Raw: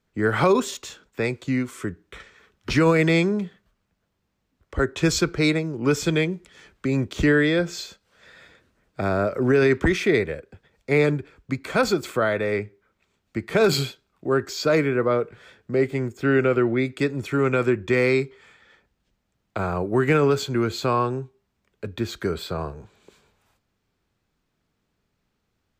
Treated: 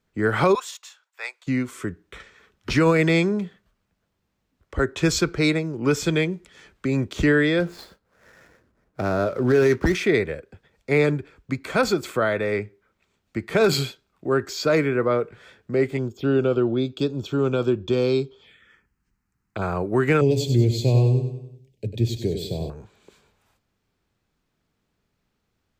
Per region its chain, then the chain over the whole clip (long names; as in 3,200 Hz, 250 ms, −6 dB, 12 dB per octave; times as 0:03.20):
0:00.55–0:01.47: high-pass filter 790 Hz 24 dB per octave + expander for the loud parts, over −43 dBFS
0:07.60–0:09.95: running median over 15 samples + double-tracking delay 17 ms −12.5 dB
0:15.97–0:19.62: parametric band 3,300 Hz +8.5 dB 0.3 octaves + phaser swept by the level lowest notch 580 Hz, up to 2,000 Hz, full sweep at −26.5 dBFS
0:20.21–0:22.70: Butterworth band-reject 1,300 Hz, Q 0.6 + parametric band 120 Hz +14 dB 0.29 octaves + repeating echo 97 ms, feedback 47%, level −8 dB
whole clip: no processing